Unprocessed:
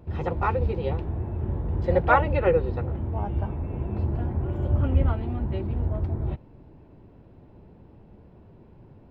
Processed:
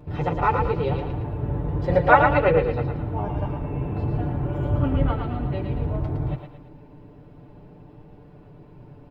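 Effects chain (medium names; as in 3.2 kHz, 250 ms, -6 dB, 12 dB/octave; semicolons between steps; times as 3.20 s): comb 6.8 ms, depth 67%; thinning echo 112 ms, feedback 45%, high-pass 420 Hz, level -4.5 dB; trim +2.5 dB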